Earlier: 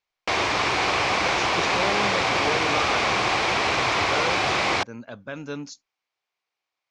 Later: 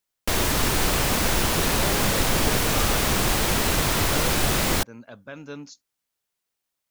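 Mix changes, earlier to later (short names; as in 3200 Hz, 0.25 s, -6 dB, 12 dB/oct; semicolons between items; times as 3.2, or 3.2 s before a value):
speech -4.5 dB; background: remove speaker cabinet 140–5500 Hz, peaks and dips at 160 Hz -10 dB, 240 Hz -10 dB, 760 Hz +6 dB, 1100 Hz +6 dB, 2300 Hz +8 dB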